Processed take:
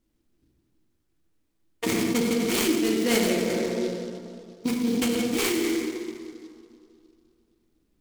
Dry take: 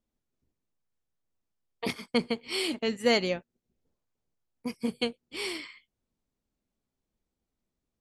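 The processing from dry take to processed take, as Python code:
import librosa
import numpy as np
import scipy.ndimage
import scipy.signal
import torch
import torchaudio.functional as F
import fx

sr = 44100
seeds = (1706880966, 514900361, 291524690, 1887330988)

p1 = fx.peak_eq(x, sr, hz=320.0, db=11.5, octaves=0.43)
p2 = fx.rev_plate(p1, sr, seeds[0], rt60_s=2.5, hf_ratio=0.4, predelay_ms=0, drr_db=-2.0)
p3 = fx.over_compress(p2, sr, threshold_db=-30.0, ratio=-1.0)
p4 = p2 + (p3 * 10.0 ** (1.5 / 20.0))
p5 = fx.peak_eq(p4, sr, hz=760.0, db=-8.0, octaves=2.3)
y = fx.noise_mod_delay(p5, sr, seeds[1], noise_hz=4000.0, depth_ms=0.052)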